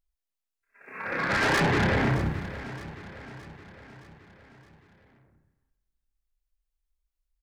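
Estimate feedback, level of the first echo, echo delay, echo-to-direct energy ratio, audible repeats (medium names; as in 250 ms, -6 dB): 54%, -15.0 dB, 618 ms, -13.5 dB, 4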